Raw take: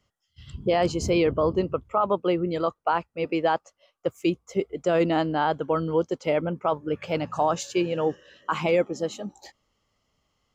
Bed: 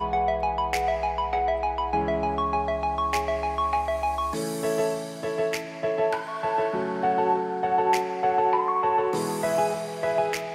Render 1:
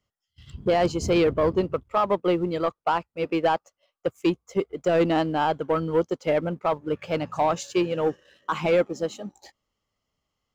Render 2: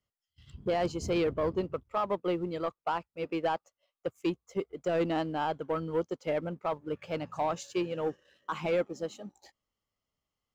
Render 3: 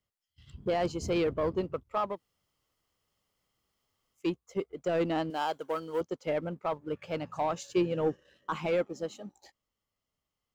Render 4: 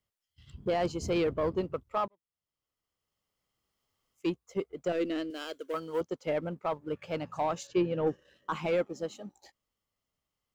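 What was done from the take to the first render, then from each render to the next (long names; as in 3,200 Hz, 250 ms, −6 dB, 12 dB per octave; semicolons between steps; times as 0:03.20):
leveller curve on the samples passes 1; expander for the loud parts 1.5 to 1, over −28 dBFS
level −8 dB
0:02.13–0:04.20: fill with room tone, crossfade 0.16 s; 0:05.30–0:06.01: bass and treble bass −14 dB, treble +12 dB; 0:07.69–0:08.56: low-shelf EQ 420 Hz +7 dB
0:02.08–0:04.29: fade in; 0:04.92–0:05.74: phaser with its sweep stopped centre 350 Hz, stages 4; 0:07.67–0:08.07: high-frequency loss of the air 130 metres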